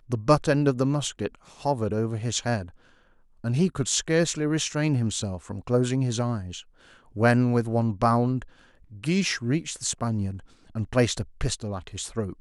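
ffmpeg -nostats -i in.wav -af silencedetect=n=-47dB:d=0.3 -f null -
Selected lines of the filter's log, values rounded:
silence_start: 2.89
silence_end: 3.44 | silence_duration: 0.55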